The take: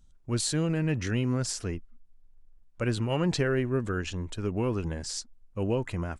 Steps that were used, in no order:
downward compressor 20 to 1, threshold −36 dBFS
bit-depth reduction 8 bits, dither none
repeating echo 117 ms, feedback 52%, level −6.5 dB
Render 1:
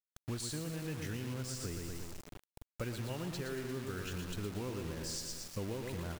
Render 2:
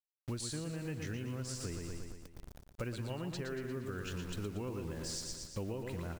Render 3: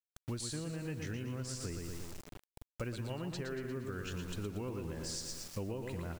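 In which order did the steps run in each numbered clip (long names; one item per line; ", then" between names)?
repeating echo, then downward compressor, then bit-depth reduction
bit-depth reduction, then repeating echo, then downward compressor
repeating echo, then bit-depth reduction, then downward compressor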